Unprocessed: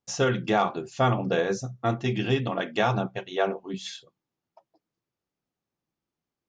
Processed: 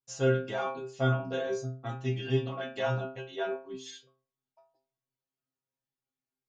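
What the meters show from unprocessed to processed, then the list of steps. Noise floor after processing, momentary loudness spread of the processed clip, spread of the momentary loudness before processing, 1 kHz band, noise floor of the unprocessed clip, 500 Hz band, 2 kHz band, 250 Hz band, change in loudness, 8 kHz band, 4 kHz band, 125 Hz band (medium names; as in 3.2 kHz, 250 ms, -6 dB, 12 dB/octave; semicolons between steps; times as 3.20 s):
under -85 dBFS, 11 LU, 10 LU, -9.5 dB, under -85 dBFS, -4.5 dB, -7.0 dB, -7.5 dB, -5.5 dB, -8.0 dB, -8.0 dB, -2.5 dB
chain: inharmonic resonator 130 Hz, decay 0.44 s, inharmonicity 0.002; trim +4 dB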